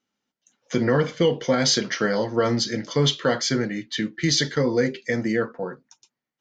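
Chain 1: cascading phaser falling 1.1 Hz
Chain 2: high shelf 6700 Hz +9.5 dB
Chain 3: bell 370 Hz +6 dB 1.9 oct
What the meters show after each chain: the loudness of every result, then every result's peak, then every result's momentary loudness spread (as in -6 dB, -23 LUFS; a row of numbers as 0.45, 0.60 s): -24.0, -22.0, -19.5 LUFS; -9.5, -6.0, -5.0 dBFS; 7, 9, 7 LU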